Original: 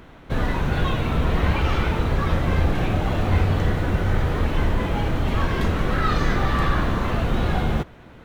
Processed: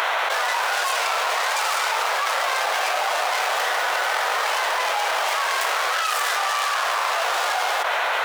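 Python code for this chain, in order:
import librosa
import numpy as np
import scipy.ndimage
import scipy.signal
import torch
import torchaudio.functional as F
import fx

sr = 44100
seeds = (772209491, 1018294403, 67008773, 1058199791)

y = fx.tracing_dist(x, sr, depth_ms=0.3)
y = scipy.signal.sosfilt(scipy.signal.cheby2(4, 50, 260.0, 'highpass', fs=sr, output='sos'), y)
y = fx.env_flatten(y, sr, amount_pct=100)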